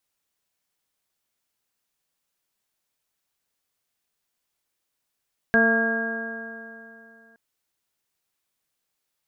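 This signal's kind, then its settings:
stiff-string partials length 1.82 s, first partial 225 Hz, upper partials −2.5/−2.5/−14.5/−15/−14/4.5 dB, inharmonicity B 0.0013, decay 2.77 s, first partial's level −20.5 dB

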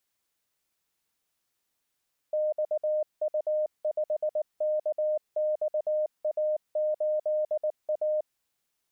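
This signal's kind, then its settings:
Morse code "XU5KXA8A" 19 words per minute 612 Hz −24 dBFS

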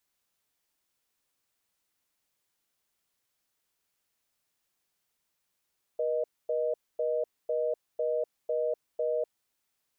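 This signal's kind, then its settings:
call progress tone reorder tone, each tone −29 dBFS 3.36 s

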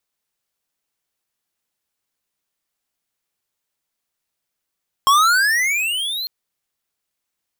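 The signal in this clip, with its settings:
pitch glide with a swell square, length 1.20 s, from 1,070 Hz, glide +24 semitones, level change −13 dB, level −12 dB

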